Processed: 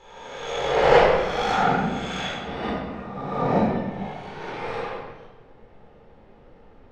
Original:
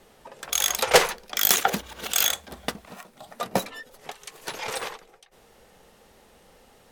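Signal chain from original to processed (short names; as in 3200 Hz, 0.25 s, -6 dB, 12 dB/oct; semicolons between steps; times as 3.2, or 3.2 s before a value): spectral swells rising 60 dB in 1.41 s; tape spacing loss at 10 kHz 38 dB; shoebox room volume 950 m³, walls mixed, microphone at 4.1 m; gain -6.5 dB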